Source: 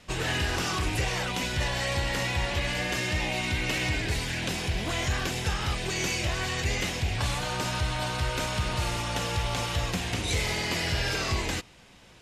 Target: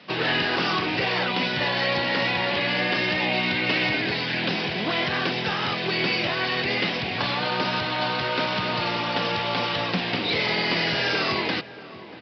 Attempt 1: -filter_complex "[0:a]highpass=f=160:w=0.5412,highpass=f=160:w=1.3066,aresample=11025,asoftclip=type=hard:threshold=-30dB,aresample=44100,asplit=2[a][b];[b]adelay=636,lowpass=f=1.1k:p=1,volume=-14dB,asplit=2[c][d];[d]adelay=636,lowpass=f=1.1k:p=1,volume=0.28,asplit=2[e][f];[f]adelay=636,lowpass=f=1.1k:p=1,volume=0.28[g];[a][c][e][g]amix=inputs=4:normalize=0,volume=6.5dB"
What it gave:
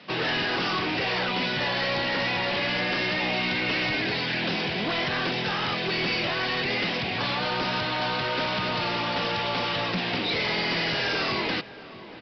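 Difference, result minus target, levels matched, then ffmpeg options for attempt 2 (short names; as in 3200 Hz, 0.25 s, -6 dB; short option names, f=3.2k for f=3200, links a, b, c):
hard clip: distortion +20 dB
-filter_complex "[0:a]highpass=f=160:w=0.5412,highpass=f=160:w=1.3066,aresample=11025,asoftclip=type=hard:threshold=-21.5dB,aresample=44100,asplit=2[a][b];[b]adelay=636,lowpass=f=1.1k:p=1,volume=-14dB,asplit=2[c][d];[d]adelay=636,lowpass=f=1.1k:p=1,volume=0.28,asplit=2[e][f];[f]adelay=636,lowpass=f=1.1k:p=1,volume=0.28[g];[a][c][e][g]amix=inputs=4:normalize=0,volume=6.5dB"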